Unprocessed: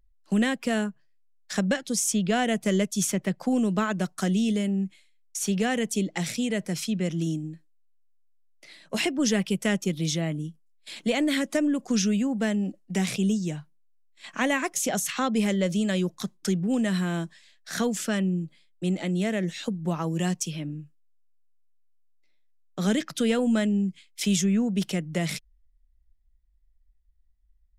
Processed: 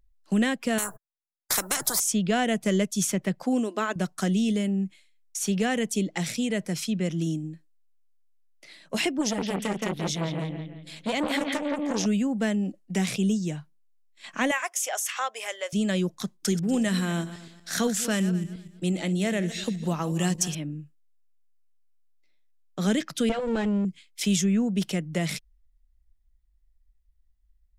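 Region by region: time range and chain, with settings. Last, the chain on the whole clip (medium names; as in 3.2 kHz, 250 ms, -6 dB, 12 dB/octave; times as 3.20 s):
0.78–2.00 s: FFT filter 110 Hz 0 dB, 730 Hz +5 dB, 1.3 kHz +1 dB, 2.9 kHz -23 dB, 4.2 kHz -15 dB, 11 kHz +11 dB + gate -49 dBFS, range -60 dB + spectrum-flattening compressor 10:1
3.43–3.96 s: brick-wall FIR high-pass 220 Hz + de-hum 346.3 Hz, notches 3
9.21–12.06 s: bucket-brigade echo 170 ms, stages 4096, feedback 45%, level -3 dB + transformer saturation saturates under 1.2 kHz
14.51–15.73 s: inverse Chebyshev high-pass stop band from 180 Hz, stop band 60 dB + peaking EQ 4.1 kHz -10 dB 0.23 oct
16.40–20.55 s: backward echo that repeats 120 ms, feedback 47%, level -13 dB + treble shelf 3.7 kHz +6 dB
23.29–23.85 s: comb filter that takes the minimum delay 5.9 ms + distance through air 94 m
whole clip: none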